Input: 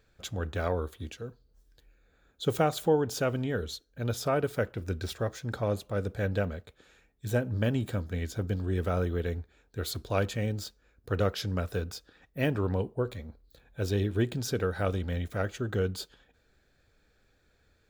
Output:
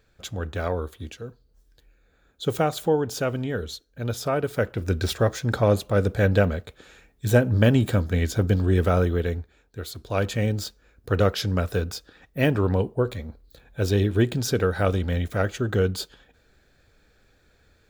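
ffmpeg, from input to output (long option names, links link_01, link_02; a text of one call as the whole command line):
ffmpeg -i in.wav -af "volume=20dB,afade=type=in:start_time=4.44:duration=0.64:silence=0.446684,afade=type=out:start_time=8.65:duration=1.3:silence=0.223872,afade=type=in:start_time=9.95:duration=0.45:silence=0.316228" out.wav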